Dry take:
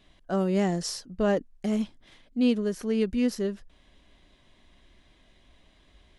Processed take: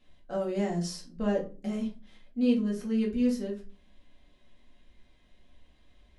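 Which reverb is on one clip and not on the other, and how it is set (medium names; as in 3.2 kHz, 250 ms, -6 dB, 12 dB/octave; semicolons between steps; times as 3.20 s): simulated room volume 170 m³, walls furnished, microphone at 2.1 m; trim -10 dB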